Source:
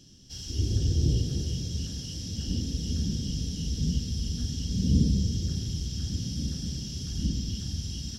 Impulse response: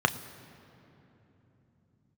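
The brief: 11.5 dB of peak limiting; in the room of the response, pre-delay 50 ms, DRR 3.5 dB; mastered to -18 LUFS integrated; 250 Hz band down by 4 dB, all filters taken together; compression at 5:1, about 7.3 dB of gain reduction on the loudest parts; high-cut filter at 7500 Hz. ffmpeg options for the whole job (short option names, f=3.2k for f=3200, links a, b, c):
-filter_complex "[0:a]lowpass=7.5k,equalizer=f=250:t=o:g=-6,acompressor=threshold=-27dB:ratio=5,alimiter=level_in=7dB:limit=-24dB:level=0:latency=1,volume=-7dB,asplit=2[a][b];[1:a]atrim=start_sample=2205,adelay=50[c];[b][c]afir=irnorm=-1:irlink=0,volume=-16.5dB[d];[a][d]amix=inputs=2:normalize=0,volume=20dB"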